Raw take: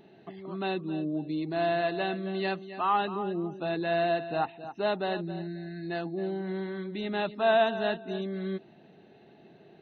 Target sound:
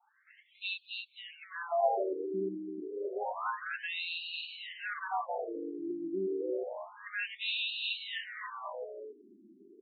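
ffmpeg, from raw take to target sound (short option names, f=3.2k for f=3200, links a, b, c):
-filter_complex "[0:a]adynamicequalizer=threshold=0.00562:dfrequency=2600:dqfactor=0.71:tfrequency=2600:tqfactor=0.71:attack=5:release=100:ratio=0.375:range=2:mode=boostabove:tftype=bell,asplit=7[a][b][c][d][e][f][g];[b]adelay=270,afreqshift=120,volume=-5dB[h];[c]adelay=540,afreqshift=240,volume=-10.8dB[i];[d]adelay=810,afreqshift=360,volume=-16.7dB[j];[e]adelay=1080,afreqshift=480,volume=-22.5dB[k];[f]adelay=1350,afreqshift=600,volume=-28.4dB[l];[g]adelay=1620,afreqshift=720,volume=-34.2dB[m];[a][h][i][j][k][l][m]amix=inputs=7:normalize=0,afftfilt=real='re*between(b*sr/1024,270*pow(3500/270,0.5+0.5*sin(2*PI*0.29*pts/sr))/1.41,270*pow(3500/270,0.5+0.5*sin(2*PI*0.29*pts/sr))*1.41)':imag='im*between(b*sr/1024,270*pow(3500/270,0.5+0.5*sin(2*PI*0.29*pts/sr))/1.41,270*pow(3500/270,0.5+0.5*sin(2*PI*0.29*pts/sr))*1.41)':win_size=1024:overlap=0.75"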